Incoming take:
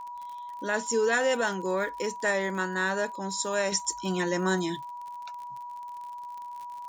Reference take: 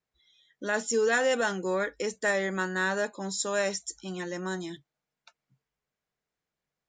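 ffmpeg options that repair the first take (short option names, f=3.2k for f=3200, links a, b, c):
-af "adeclick=t=4,bandreject=f=970:w=30,agate=range=-21dB:threshold=-32dB,asetnsamples=n=441:p=0,asendcmd='3.72 volume volume -7dB',volume=0dB"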